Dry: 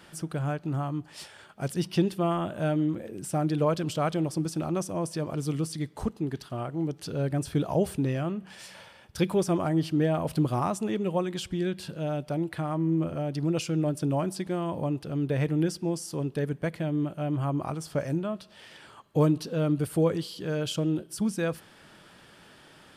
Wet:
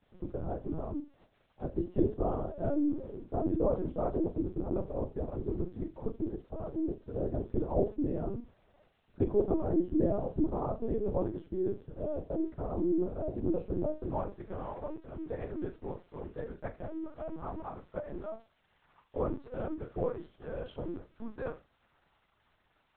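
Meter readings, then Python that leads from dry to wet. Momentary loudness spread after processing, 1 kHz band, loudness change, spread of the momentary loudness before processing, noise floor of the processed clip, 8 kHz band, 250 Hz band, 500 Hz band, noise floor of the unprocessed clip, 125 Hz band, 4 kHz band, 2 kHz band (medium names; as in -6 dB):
12 LU, -8.0 dB, -6.0 dB, 8 LU, -73 dBFS, under -40 dB, -6.0 dB, -4.0 dB, -54 dBFS, -11.0 dB, under -25 dB, under -15 dB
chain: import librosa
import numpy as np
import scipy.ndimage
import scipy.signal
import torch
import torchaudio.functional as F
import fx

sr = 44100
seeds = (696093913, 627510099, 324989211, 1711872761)

y = fx.peak_eq(x, sr, hz=2700.0, db=-15.0, octaves=2.0)
y = y * np.sin(2.0 * np.pi * 33.0 * np.arange(len(y)) / sr)
y = np.sign(y) * np.maximum(np.abs(y) - 10.0 ** (-56.5 / 20.0), 0.0)
y = fx.filter_sweep_bandpass(y, sr, from_hz=450.0, to_hz=1200.0, start_s=13.53, end_s=14.43, q=0.8)
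y = fx.dmg_crackle(y, sr, seeds[0], per_s=580.0, level_db=-60.0)
y = fx.room_flutter(y, sr, wall_m=6.3, rt60_s=0.25)
y = fx.lpc_vocoder(y, sr, seeds[1], excitation='pitch_kept', order=10)
y = F.gain(torch.from_numpy(y), 2.5).numpy()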